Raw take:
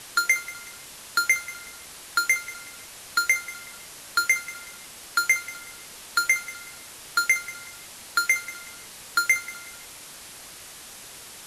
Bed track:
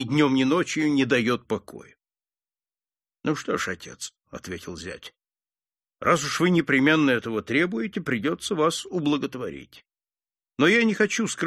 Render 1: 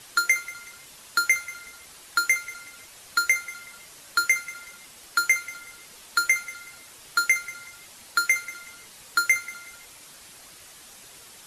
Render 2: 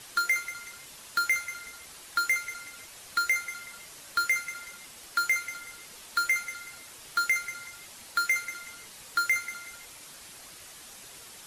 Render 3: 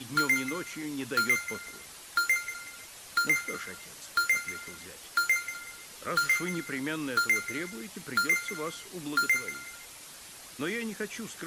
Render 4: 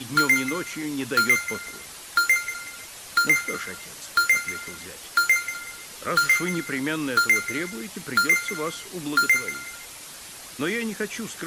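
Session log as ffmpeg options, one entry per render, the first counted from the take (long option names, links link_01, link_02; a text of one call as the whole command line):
ffmpeg -i in.wav -af "afftdn=noise_reduction=6:noise_floor=-44" out.wav
ffmpeg -i in.wav -af "asoftclip=type=tanh:threshold=-19dB" out.wav
ffmpeg -i in.wav -i bed.wav -filter_complex "[1:a]volume=-14.5dB[link_01];[0:a][link_01]amix=inputs=2:normalize=0" out.wav
ffmpeg -i in.wav -af "volume=6.5dB" out.wav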